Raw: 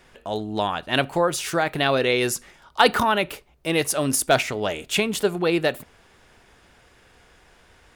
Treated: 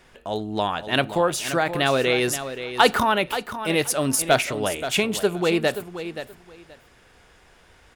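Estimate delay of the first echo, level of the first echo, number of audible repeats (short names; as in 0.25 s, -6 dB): 0.527 s, -11.0 dB, 2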